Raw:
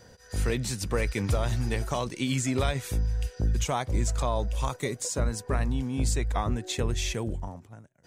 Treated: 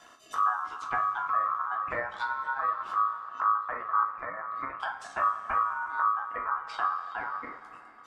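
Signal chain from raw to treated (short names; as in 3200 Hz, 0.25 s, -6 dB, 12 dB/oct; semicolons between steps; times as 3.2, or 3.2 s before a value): treble ducked by the level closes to 380 Hz, closed at -23 dBFS; reverb removal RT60 1.7 s; two-slope reverb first 0.3 s, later 3.9 s, from -18 dB, DRR 1 dB; ring modulator 1200 Hz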